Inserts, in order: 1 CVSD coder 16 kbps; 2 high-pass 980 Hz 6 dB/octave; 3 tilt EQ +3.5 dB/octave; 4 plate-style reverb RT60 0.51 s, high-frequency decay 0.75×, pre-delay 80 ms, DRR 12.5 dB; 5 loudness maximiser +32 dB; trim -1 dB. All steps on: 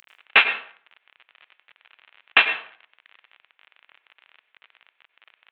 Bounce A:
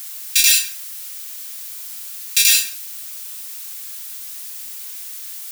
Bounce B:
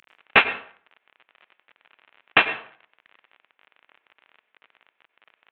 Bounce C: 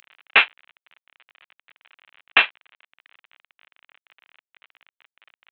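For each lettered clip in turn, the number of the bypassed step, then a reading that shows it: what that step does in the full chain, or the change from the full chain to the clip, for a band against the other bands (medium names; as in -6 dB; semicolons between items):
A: 1, crest factor change -5.5 dB; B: 3, 250 Hz band +8.5 dB; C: 4, momentary loudness spread change -5 LU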